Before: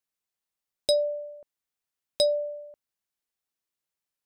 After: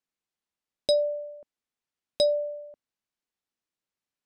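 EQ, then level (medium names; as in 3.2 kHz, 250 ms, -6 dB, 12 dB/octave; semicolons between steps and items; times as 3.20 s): distance through air 53 m; peaking EQ 250 Hz +5 dB 1.1 oct; 0.0 dB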